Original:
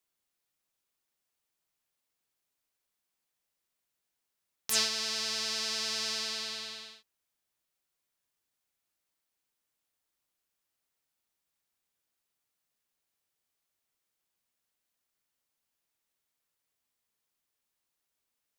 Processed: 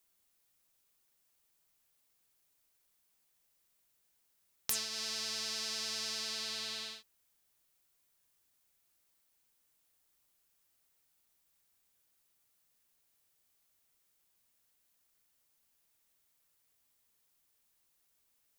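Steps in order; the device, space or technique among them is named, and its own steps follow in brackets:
ASMR close-microphone chain (low-shelf EQ 110 Hz +6 dB; downward compressor 8 to 1, threshold −38 dBFS, peak gain reduction 16.5 dB; high-shelf EQ 7,700 Hz +7 dB)
level +4 dB

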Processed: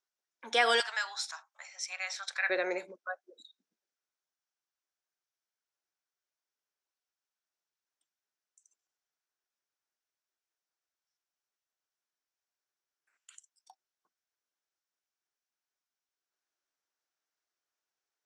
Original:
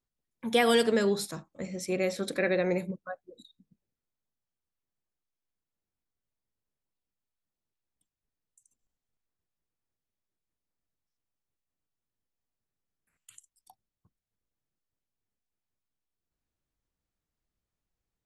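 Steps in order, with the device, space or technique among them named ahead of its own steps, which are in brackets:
phone speaker on a table (loudspeaker in its box 410–7,700 Hz, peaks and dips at 490 Hz −7 dB, 1,500 Hz +6 dB, 5,700 Hz +7 dB)
0:00.80–0:02.50: elliptic high-pass filter 800 Hz, stop band 70 dB

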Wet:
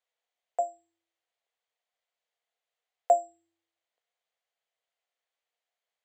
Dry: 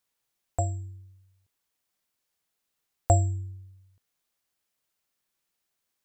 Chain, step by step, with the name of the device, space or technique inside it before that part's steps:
phone speaker on a table (loudspeaker in its box 480–6,900 Hz, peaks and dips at 480 Hz +9 dB, 700 Hz +10 dB, 2,000 Hz +5 dB, 3,200 Hz +4 dB, 5,400 Hz −8 dB)
level −6.5 dB

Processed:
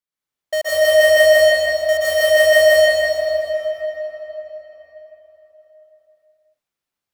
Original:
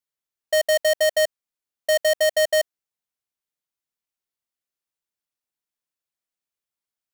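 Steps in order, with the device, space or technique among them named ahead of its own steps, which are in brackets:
swimming-pool hall (convolution reverb RT60 4.4 s, pre-delay 118 ms, DRR −10 dB; high-shelf EQ 5,200 Hz −5.5 dB)
level −1 dB

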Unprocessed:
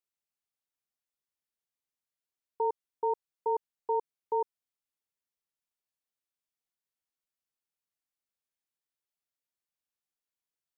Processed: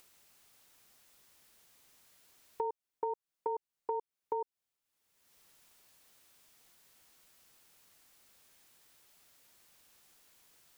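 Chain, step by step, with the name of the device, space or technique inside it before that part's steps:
upward and downward compression (upward compression, threshold −49 dBFS; downward compressor 5 to 1, threshold −37 dBFS, peak gain reduction 11 dB)
level +3.5 dB

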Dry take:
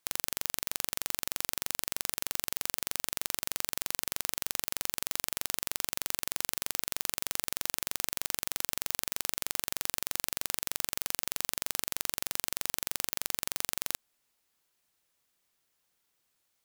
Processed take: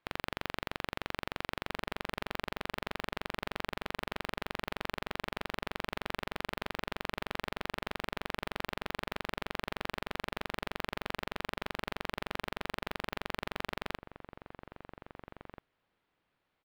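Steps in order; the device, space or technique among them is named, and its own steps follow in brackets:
shout across a valley (high-frequency loss of the air 430 metres; slap from a distant wall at 280 metres, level −8 dB)
level +6.5 dB

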